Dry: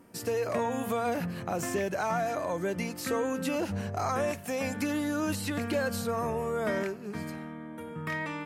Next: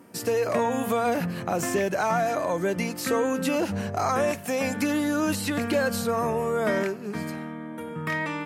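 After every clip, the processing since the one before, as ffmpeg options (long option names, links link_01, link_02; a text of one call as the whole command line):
ffmpeg -i in.wav -af "highpass=110,volume=5.5dB" out.wav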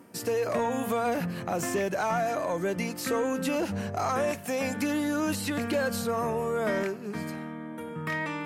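ffmpeg -i in.wav -af "areverse,acompressor=mode=upward:threshold=-33dB:ratio=2.5,areverse,asoftclip=type=tanh:threshold=-15dB,volume=-2.5dB" out.wav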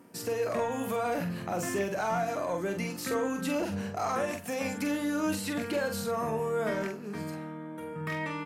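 ffmpeg -i in.wav -filter_complex "[0:a]asplit=2[link_01][link_02];[link_02]adelay=45,volume=-6dB[link_03];[link_01][link_03]amix=inputs=2:normalize=0,volume=-3.5dB" out.wav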